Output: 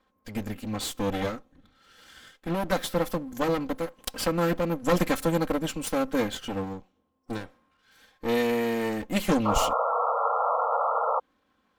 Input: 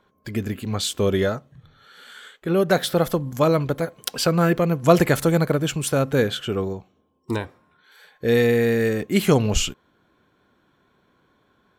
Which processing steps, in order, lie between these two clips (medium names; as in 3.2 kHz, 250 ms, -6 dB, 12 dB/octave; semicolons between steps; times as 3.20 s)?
comb filter that takes the minimum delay 3.8 ms; painted sound noise, 9.45–11.20 s, 450–1400 Hz -20 dBFS; trim -5.5 dB